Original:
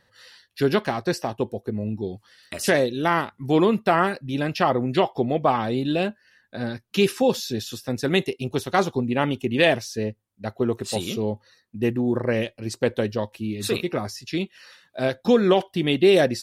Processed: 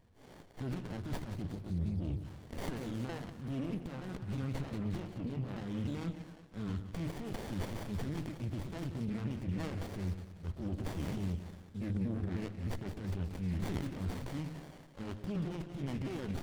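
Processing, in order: sawtooth pitch modulation -5 st, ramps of 309 ms; compression 6:1, threshold -32 dBFS, peak gain reduction 17.5 dB; transient shaper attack -7 dB, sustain +8 dB; amplifier tone stack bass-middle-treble 6-0-2; de-hum 52.83 Hz, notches 3; on a send: two-band feedback delay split 570 Hz, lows 114 ms, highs 181 ms, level -10 dB; on the sum: sliding maximum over 33 samples; trim +17 dB

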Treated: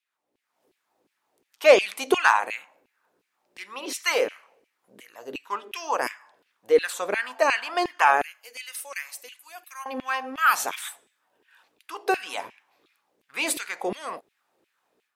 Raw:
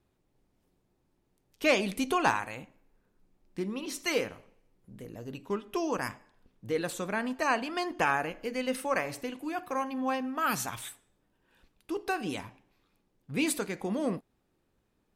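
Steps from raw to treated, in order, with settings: hum 60 Hz, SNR 35 dB; level rider gain up to 10 dB; LFO high-pass saw down 2.8 Hz 360–2700 Hz; 8.22–9.86 s: differentiator; trim -4.5 dB

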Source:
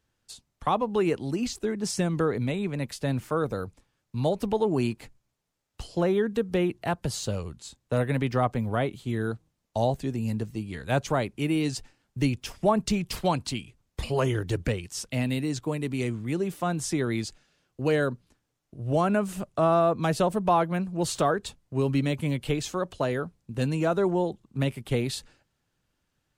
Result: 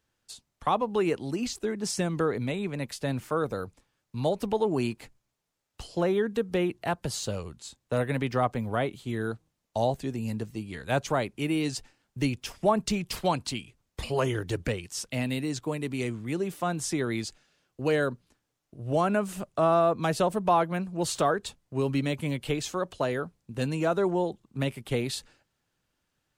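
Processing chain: bass shelf 230 Hz -5 dB

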